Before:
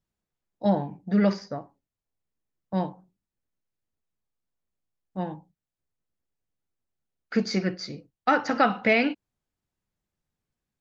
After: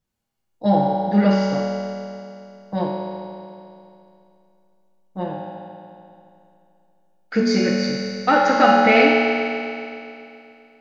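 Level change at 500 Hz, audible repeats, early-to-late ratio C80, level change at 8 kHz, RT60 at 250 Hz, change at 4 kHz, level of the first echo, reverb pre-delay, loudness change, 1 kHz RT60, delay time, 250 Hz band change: +9.5 dB, no echo, 0.5 dB, no reading, 2.7 s, +9.0 dB, no echo, 4 ms, +7.0 dB, 2.7 s, no echo, +7.0 dB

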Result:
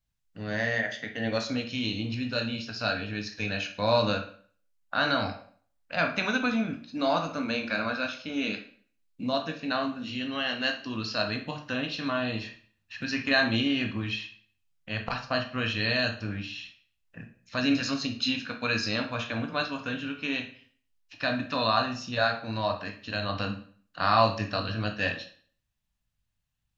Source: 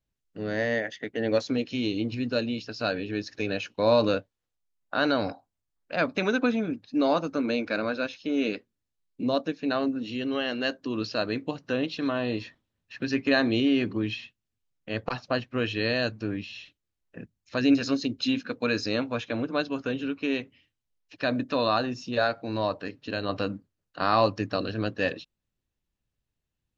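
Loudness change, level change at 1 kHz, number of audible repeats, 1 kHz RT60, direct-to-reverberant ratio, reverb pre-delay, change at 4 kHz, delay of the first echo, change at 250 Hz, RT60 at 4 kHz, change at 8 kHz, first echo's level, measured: -1.0 dB, +1.0 dB, no echo, 0.50 s, 3.5 dB, 16 ms, +3.0 dB, no echo, -4.0 dB, 0.45 s, no reading, no echo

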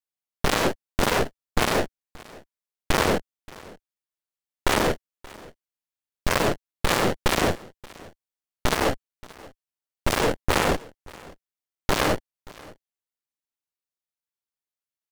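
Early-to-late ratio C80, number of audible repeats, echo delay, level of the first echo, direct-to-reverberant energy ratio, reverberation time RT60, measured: no reverb, 1, 578 ms, -22.0 dB, no reverb, no reverb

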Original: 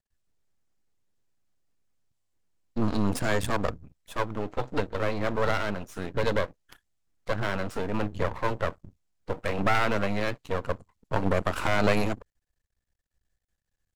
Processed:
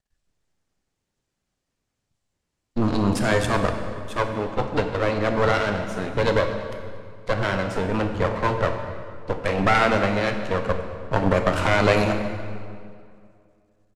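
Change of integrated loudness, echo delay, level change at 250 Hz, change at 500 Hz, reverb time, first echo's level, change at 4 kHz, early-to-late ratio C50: +6.0 dB, 235 ms, +6.0 dB, +6.5 dB, 2.3 s, -20.5 dB, +6.0 dB, 6.5 dB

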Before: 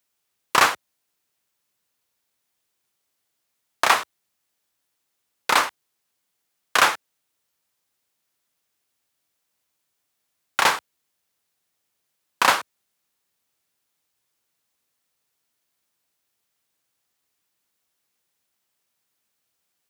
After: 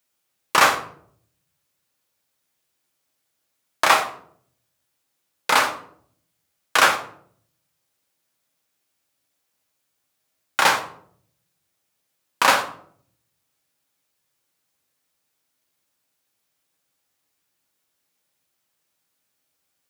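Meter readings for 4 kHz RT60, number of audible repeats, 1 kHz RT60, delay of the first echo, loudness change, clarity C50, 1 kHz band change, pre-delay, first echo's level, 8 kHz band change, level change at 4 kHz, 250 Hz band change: 0.40 s, no echo, 0.55 s, no echo, +1.5 dB, 10.5 dB, +1.5 dB, 6 ms, no echo, +1.5 dB, +1.5 dB, +2.5 dB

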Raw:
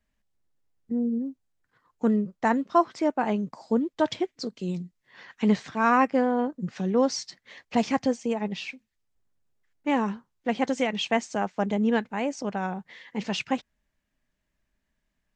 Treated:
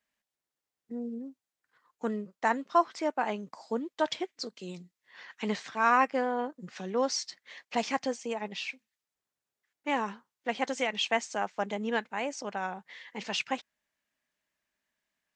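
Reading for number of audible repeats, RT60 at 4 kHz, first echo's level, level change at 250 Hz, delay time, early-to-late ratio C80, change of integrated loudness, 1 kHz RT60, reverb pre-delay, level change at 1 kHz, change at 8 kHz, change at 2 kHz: no echo, no reverb, no echo, -10.5 dB, no echo, no reverb, -5.0 dB, no reverb, no reverb, -2.5 dB, 0.0 dB, -1.0 dB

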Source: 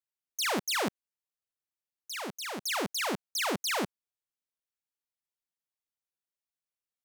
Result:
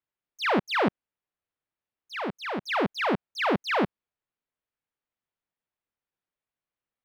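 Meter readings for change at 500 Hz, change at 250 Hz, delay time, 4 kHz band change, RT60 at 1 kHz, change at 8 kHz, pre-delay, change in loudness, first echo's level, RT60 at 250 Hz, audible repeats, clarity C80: +7.5 dB, +8.0 dB, no echo, -1.5 dB, no reverb, -18.0 dB, no reverb, +4.0 dB, no echo, no reverb, no echo, no reverb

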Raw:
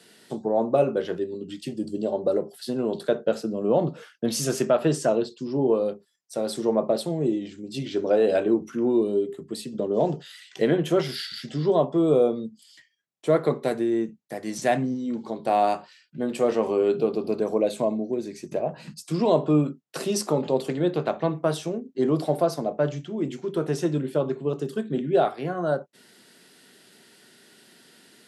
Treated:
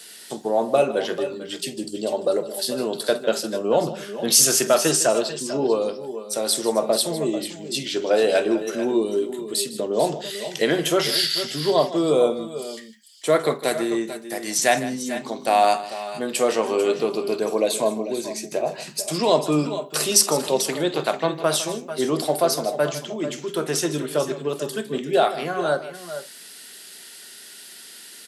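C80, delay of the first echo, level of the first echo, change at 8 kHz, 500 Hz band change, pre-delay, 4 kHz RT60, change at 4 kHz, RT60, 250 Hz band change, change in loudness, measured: no reverb, 47 ms, -17.0 dB, +15.5 dB, +2.0 dB, no reverb, no reverb, +12.5 dB, no reverb, -1.0 dB, +3.0 dB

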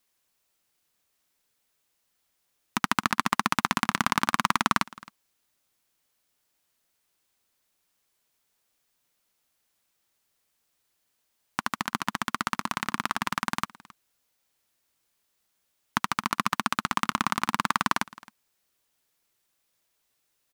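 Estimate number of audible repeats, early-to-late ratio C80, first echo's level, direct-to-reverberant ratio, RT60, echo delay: 1, no reverb, -22.0 dB, no reverb, no reverb, 267 ms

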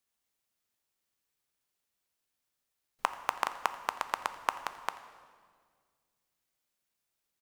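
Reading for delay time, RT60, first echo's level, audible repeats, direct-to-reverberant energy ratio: 85 ms, 1.9 s, -20.5 dB, 1, 10.0 dB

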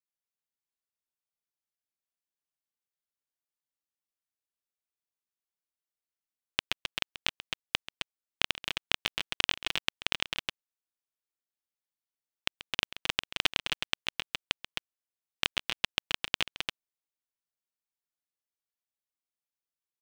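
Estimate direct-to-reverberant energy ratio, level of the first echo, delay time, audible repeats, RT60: no reverb, -15.5 dB, 135 ms, 2, no reverb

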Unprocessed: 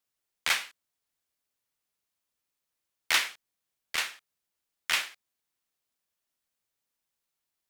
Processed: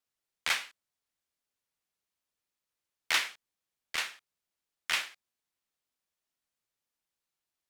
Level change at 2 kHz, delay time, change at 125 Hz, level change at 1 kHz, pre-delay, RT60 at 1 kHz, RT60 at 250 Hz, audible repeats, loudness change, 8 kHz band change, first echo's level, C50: -2.5 dB, no echo, no reading, -2.5 dB, no reverb, no reverb, no reverb, no echo, -3.0 dB, -4.0 dB, no echo, no reverb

